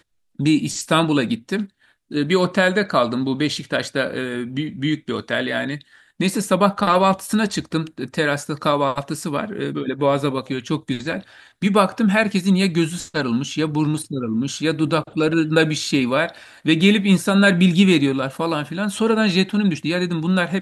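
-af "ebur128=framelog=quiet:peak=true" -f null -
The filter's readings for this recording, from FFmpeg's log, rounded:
Integrated loudness:
  I:         -20.0 LUFS
  Threshold: -30.1 LUFS
Loudness range:
  LRA:         5.4 LU
  Threshold: -40.1 LUFS
  LRA low:   -22.6 LUFS
  LRA high:  -17.2 LUFS
True peak:
  Peak:       -1.5 dBFS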